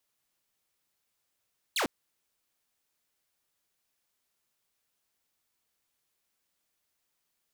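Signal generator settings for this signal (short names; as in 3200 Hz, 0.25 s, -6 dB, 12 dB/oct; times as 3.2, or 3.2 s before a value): laser zap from 4600 Hz, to 210 Hz, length 0.10 s saw, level -23.5 dB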